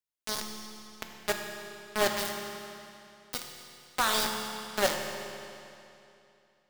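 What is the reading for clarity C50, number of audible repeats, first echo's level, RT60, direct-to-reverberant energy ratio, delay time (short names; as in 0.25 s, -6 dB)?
4.0 dB, none, none, 2.8 s, 2.5 dB, none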